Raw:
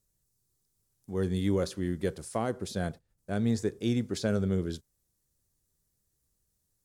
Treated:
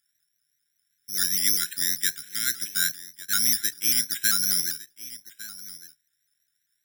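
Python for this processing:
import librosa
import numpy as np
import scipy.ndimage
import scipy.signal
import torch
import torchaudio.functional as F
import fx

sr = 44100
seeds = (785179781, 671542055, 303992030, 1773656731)

p1 = fx.brickwall_bandstop(x, sr, low_hz=390.0, high_hz=1400.0)
p2 = fx.peak_eq(p1, sr, hz=1800.0, db=15.0, octaves=1.8)
p3 = p2 + fx.echo_single(p2, sr, ms=1155, db=-17.0, dry=0)
p4 = (np.kron(scipy.signal.resample_poly(p3, 1, 8), np.eye(8)[0]) * 8)[:len(p3)]
p5 = scipy.signal.sosfilt(scipy.signal.butter(4, 120.0, 'highpass', fs=sr, output='sos'), p4)
p6 = fx.low_shelf_res(p5, sr, hz=760.0, db=-10.0, q=3.0)
p7 = fx.vibrato_shape(p6, sr, shape='saw_up', rate_hz=5.1, depth_cents=100.0)
y = p7 * librosa.db_to_amplitude(-4.0)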